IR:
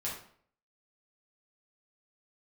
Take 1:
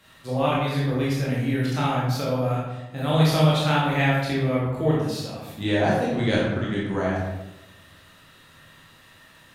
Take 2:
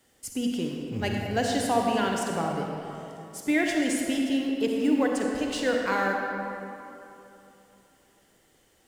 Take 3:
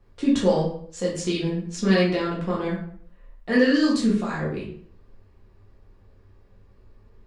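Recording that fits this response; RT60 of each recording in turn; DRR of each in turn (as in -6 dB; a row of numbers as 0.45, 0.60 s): 3; 1.0, 3.0, 0.55 s; -6.0, 0.0, -6.0 dB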